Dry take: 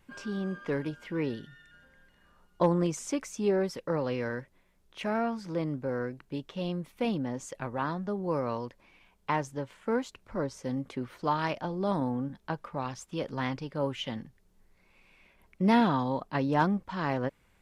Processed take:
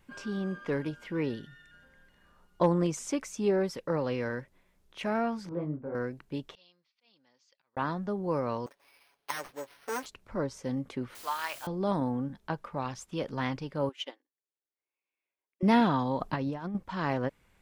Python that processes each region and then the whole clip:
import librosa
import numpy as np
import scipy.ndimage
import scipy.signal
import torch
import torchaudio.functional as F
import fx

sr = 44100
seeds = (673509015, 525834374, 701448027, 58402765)

y = fx.chain(x, sr, fx.lowpass(hz=1400.0, slope=12),
    fx.detune_double(cents=54), at=(5.49, 5.95))
y = fx.chain(y, sr, fx.auto_swell(attack_ms=174.0),
    fx.bandpass_q(hz=4800.0, q=4.3),
    fx.air_absorb(metres=230.0), at=(6.55, 7.77))
y = fx.chain(y, sr, fx.lower_of_two(delay_ms=7.1),
    fx.highpass(hz=480.0, slope=12),
    fx.resample_bad(factor=6, down='none', up='hold'), at=(8.66, 10.06))
y = fx.chain(y, sr, fx.highpass(hz=1100.0, slope=12),
    fx.quant_dither(seeds[0], bits=8, dither='triangular'), at=(11.15, 11.67))
y = fx.chain(y, sr, fx.brickwall_highpass(low_hz=260.0),
    fx.upward_expand(threshold_db=-54.0, expansion=2.5), at=(13.89, 15.63))
y = fx.chain(y, sr, fx.low_shelf(hz=92.0, db=7.0),
    fx.over_compress(threshold_db=-31.0, ratio=-0.5), at=(16.2, 16.75))